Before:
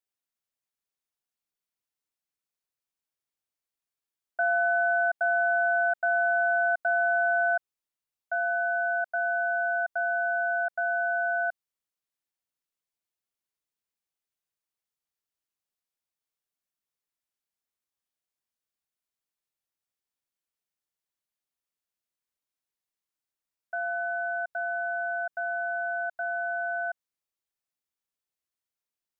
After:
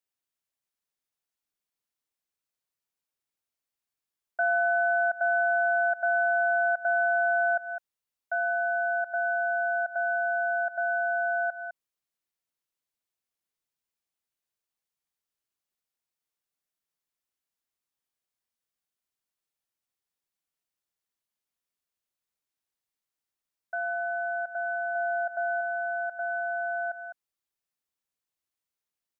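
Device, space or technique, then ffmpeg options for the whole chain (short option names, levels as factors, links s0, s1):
ducked delay: -filter_complex "[0:a]asplit=3[s0][s1][s2];[s1]adelay=205,volume=0.355[s3];[s2]apad=whole_len=1296687[s4];[s3][s4]sidechaincompress=threshold=0.0158:ratio=8:attack=43:release=162[s5];[s0][s5]amix=inputs=2:normalize=0,asettb=1/sr,asplit=3[s6][s7][s8];[s6]atrim=end=24.954[s9];[s7]atrim=start=24.95:end=25.61,asetpts=PTS-STARTPTS,afade=t=in:d=0.004:c=qsin,afade=t=out:st=0.656:d=0.004:c=qsin,equalizer=f=790:w=1.5:g=3.5[s10];[s8]atrim=start=25.606[s11];[s9][s10]acrossfade=d=0.004:c1=hsin:c2=qsin[s12];[s12][s11]acrossfade=d=0.004:c1=qsin:c2=hsin"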